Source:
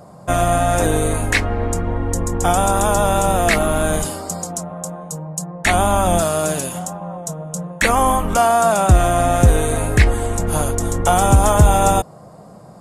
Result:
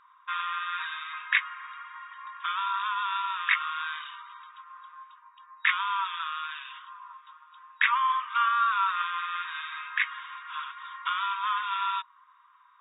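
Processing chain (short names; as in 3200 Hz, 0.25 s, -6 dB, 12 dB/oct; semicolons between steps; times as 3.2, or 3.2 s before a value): FFT band-pass 940–3800 Hz; 8.35–9.02 dynamic EQ 1200 Hz, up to +5 dB, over -33 dBFS, Q 2.2; gain -5 dB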